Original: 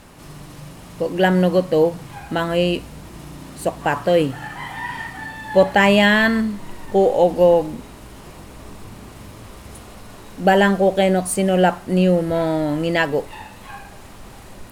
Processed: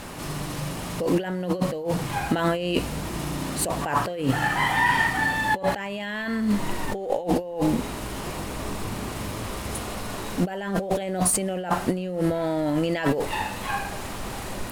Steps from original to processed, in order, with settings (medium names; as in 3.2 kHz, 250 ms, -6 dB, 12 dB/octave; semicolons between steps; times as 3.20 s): bass shelf 180 Hz -4 dB; compressor with a negative ratio -27 dBFS, ratio -1; trim +1.5 dB